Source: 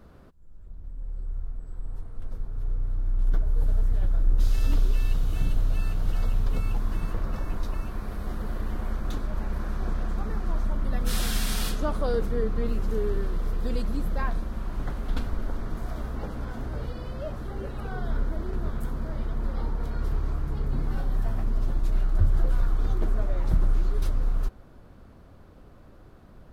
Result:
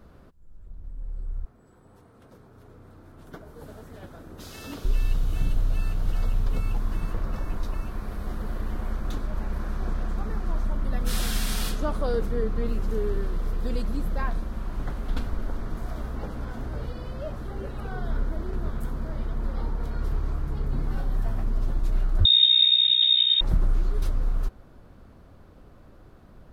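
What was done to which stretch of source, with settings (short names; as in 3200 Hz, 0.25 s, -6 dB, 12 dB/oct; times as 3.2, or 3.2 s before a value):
1.45–4.85 HPF 190 Hz
22.25–23.41 inverted band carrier 3700 Hz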